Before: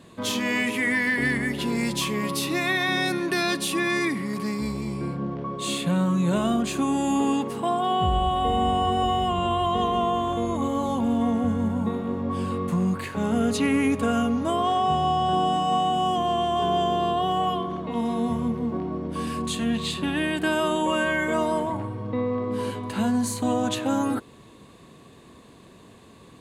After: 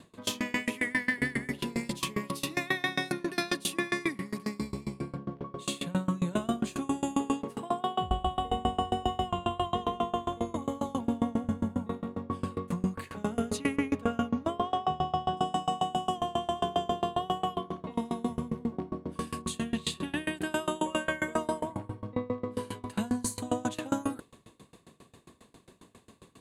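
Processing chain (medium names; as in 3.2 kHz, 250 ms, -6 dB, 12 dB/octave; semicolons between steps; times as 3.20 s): peaking EQ 9.5 kHz +2 dB 1.1 oct, from 13.76 s -9 dB, from 15.37 s +5.5 dB; sawtooth tremolo in dB decaying 7.4 Hz, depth 26 dB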